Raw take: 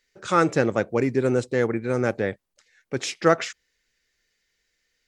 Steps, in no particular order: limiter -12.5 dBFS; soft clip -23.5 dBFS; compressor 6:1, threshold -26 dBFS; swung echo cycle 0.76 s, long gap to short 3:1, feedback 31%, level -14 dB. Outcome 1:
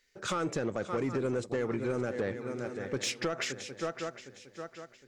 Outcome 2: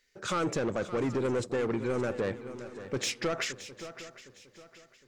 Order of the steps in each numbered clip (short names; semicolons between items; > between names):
swung echo > limiter > compressor > soft clip; limiter > soft clip > swung echo > compressor